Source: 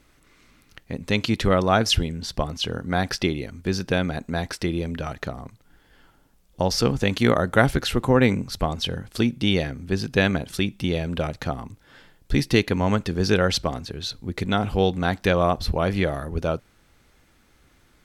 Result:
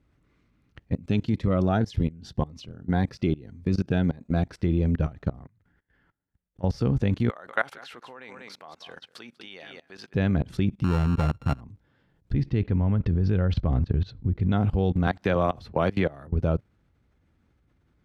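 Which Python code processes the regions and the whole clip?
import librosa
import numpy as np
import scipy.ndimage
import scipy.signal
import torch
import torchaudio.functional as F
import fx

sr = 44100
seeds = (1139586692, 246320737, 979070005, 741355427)

y = fx.chain(x, sr, fx.low_shelf(hz=87.0, db=-9.5),
    fx.notch_cascade(direction='rising', hz=1.8), at=(0.94, 4.47))
y = fx.chain(y, sr, fx.hum_notches(base_hz=50, count=4),
    fx.level_steps(step_db=19),
    fx.peak_eq(hz=1800.0, db=11.5, octaves=0.69), at=(5.39, 6.64))
y = fx.chain(y, sr, fx.highpass(hz=970.0, slope=12),
    fx.echo_single(ms=193, db=-12.0), at=(7.29, 10.14))
y = fx.chain(y, sr, fx.sample_sort(block=32),
    fx.high_shelf(hz=6400.0, db=-4.0), at=(10.84, 11.61))
y = fx.chain(y, sr, fx.lowpass(hz=3900.0, slope=12),
    fx.low_shelf(hz=110.0, db=10.5), at=(12.33, 14.52))
y = fx.chain(y, sr, fx.highpass(hz=89.0, slope=6),
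    fx.low_shelf(hz=380.0, db=-10.0),
    fx.band_squash(depth_pct=100), at=(15.07, 16.27))
y = scipy.signal.sosfilt(scipy.signal.butter(2, 80.0, 'highpass', fs=sr, output='sos'), y)
y = fx.riaa(y, sr, side='playback')
y = fx.level_steps(y, sr, step_db=22)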